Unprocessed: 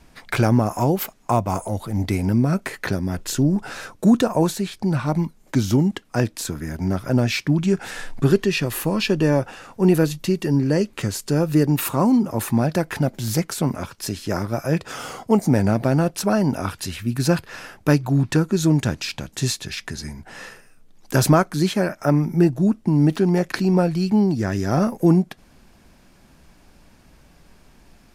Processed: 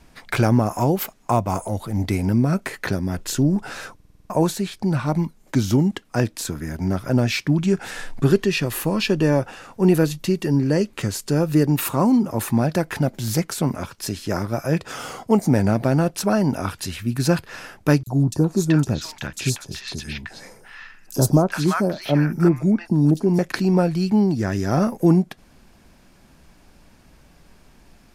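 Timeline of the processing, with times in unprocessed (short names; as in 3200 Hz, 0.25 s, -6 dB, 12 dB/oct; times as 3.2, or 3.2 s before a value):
3.95 stutter in place 0.05 s, 7 plays
18.03–23.39 three bands offset in time highs, lows, mids 40/380 ms, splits 960/4400 Hz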